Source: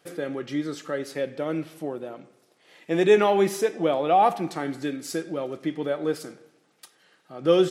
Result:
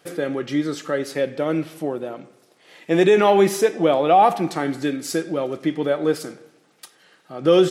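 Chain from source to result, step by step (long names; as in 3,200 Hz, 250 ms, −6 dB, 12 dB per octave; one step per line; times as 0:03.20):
boost into a limiter +11 dB
level −5 dB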